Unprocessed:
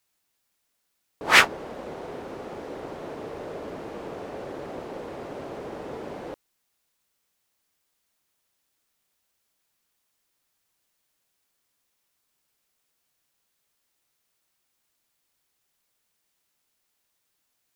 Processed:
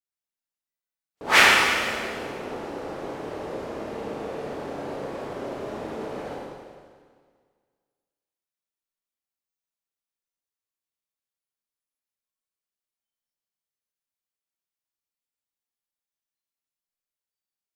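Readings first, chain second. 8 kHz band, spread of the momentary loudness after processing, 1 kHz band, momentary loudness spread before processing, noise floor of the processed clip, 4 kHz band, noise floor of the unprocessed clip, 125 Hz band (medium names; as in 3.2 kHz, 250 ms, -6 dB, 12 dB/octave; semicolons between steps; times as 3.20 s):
+3.5 dB, 19 LU, +3.5 dB, 20 LU, under -85 dBFS, +3.5 dB, -76 dBFS, +2.5 dB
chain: spectral noise reduction 22 dB; Schroeder reverb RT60 1.8 s, combs from 28 ms, DRR -4.5 dB; trim -2.5 dB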